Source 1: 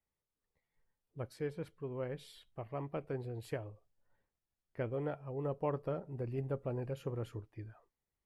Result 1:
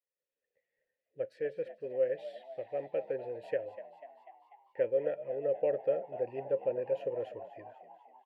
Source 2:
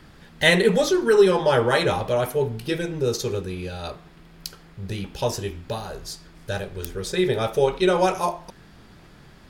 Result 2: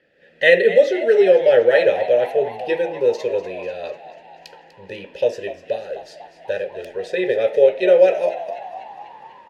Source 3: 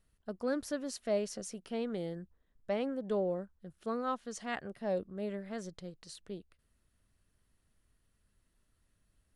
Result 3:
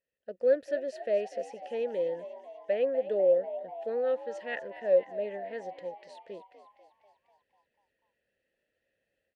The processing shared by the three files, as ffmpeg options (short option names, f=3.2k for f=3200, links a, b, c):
-filter_complex "[0:a]asplit=3[a][b][c];[a]bandpass=f=530:t=q:w=8,volume=0dB[d];[b]bandpass=f=1.84k:t=q:w=8,volume=-6dB[e];[c]bandpass=f=2.48k:t=q:w=8,volume=-9dB[f];[d][e][f]amix=inputs=3:normalize=0,dynaudnorm=f=160:g=3:m=11.5dB,asplit=8[g][h][i][j][k][l][m][n];[h]adelay=246,afreqshift=69,volume=-14.5dB[o];[i]adelay=492,afreqshift=138,volume=-18.7dB[p];[j]adelay=738,afreqshift=207,volume=-22.8dB[q];[k]adelay=984,afreqshift=276,volume=-27dB[r];[l]adelay=1230,afreqshift=345,volume=-31.1dB[s];[m]adelay=1476,afreqshift=414,volume=-35.3dB[t];[n]adelay=1722,afreqshift=483,volume=-39.4dB[u];[g][o][p][q][r][s][t][u]amix=inputs=8:normalize=0,volume=2dB"